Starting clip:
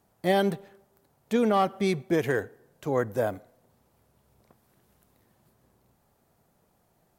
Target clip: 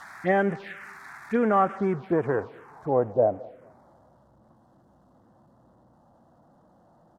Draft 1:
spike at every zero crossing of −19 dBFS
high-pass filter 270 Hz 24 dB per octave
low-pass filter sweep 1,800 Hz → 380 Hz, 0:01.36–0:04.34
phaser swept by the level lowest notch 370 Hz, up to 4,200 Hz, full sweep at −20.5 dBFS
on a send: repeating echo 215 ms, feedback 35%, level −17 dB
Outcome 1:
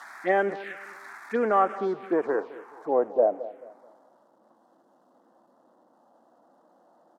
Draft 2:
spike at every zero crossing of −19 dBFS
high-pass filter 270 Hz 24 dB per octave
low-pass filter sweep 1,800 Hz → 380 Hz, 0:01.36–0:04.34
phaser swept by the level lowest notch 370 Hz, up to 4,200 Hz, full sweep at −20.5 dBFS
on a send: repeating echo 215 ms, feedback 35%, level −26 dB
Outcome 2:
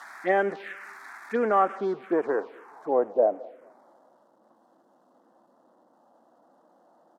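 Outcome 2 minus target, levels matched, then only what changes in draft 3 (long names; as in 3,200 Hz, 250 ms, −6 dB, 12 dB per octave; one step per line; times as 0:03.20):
250 Hz band −4.0 dB
remove: high-pass filter 270 Hz 24 dB per octave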